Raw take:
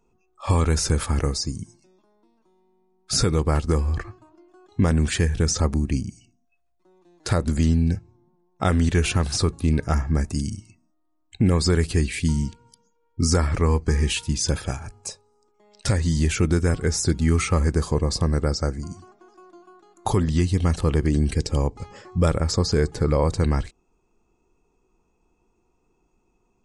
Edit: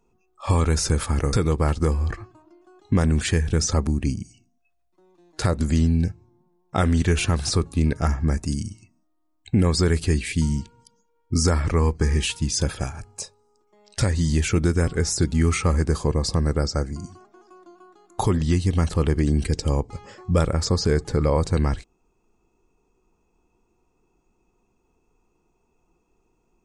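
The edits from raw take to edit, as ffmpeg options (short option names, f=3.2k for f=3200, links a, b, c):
-filter_complex "[0:a]asplit=2[a][b];[a]atrim=end=1.332[c];[b]atrim=start=3.198[d];[c][d]acrossfade=d=0.004:c1=hsin:c2=hsin"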